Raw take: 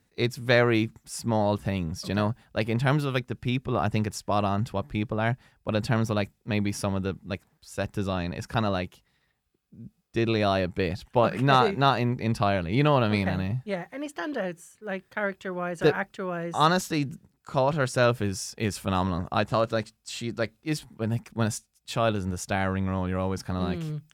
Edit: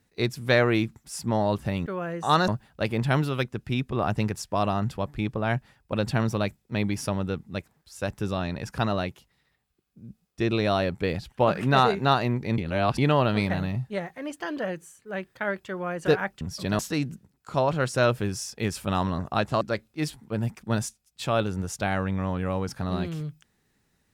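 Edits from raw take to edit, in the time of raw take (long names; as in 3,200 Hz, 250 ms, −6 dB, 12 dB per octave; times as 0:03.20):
0:01.86–0:02.24: swap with 0:16.17–0:16.79
0:12.34–0:12.74: reverse
0:19.61–0:20.30: remove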